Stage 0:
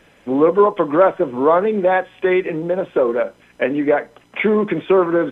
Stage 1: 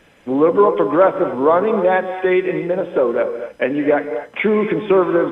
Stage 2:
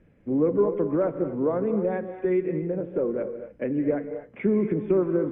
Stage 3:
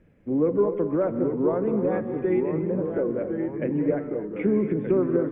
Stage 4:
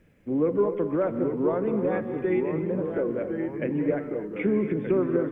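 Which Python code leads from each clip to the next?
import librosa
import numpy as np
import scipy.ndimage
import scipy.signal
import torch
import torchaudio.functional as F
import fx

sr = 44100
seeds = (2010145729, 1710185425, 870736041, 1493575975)

y1 = fx.rev_gated(x, sr, seeds[0], gate_ms=280, shape='rising', drr_db=9.0)
y2 = fx.curve_eq(y1, sr, hz=(140.0, 500.0, 860.0, 2200.0, 3300.0), db=(0, -10, -20, -18, -29))
y3 = fx.echo_pitch(y2, sr, ms=784, semitones=-2, count=3, db_per_echo=-6.0)
y4 = fx.high_shelf(y3, sr, hz=2100.0, db=11.5)
y4 = F.gain(torch.from_numpy(y4), -2.0).numpy()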